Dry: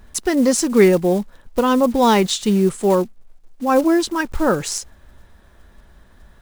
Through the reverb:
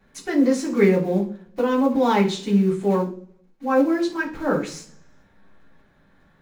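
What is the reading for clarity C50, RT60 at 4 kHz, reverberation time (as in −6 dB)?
10.5 dB, 0.55 s, 0.50 s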